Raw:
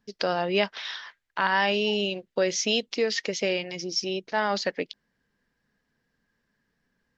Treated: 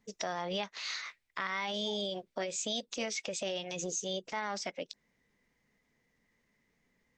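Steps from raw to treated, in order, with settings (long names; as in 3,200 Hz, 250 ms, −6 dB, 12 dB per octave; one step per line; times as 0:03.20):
formants moved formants +3 semitones
downward compressor 6 to 1, threshold −32 dBFS, peak gain reduction 13 dB
transient designer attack −4 dB, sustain 0 dB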